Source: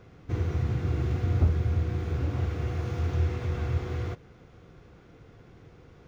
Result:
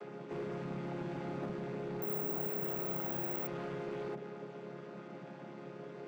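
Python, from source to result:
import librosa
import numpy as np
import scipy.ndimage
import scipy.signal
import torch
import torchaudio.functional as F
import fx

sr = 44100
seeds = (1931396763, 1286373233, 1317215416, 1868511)

p1 = fx.chord_vocoder(x, sr, chord='major triad', root=49)
p2 = scipy.signal.sosfilt(scipy.signal.butter(2, 360.0, 'highpass', fs=sr, output='sos'), p1)
p3 = fx.over_compress(p2, sr, threshold_db=-54.0, ratio=-1.0)
p4 = p2 + F.gain(torch.from_numpy(p3), 0.0).numpy()
p5 = np.clip(p4, -10.0 ** (-36.5 / 20.0), 10.0 ** (-36.5 / 20.0))
p6 = fx.resample_bad(p5, sr, factor=2, down='none', up='zero_stuff', at=(2.02, 3.47))
y = F.gain(torch.from_numpy(p6), 1.5).numpy()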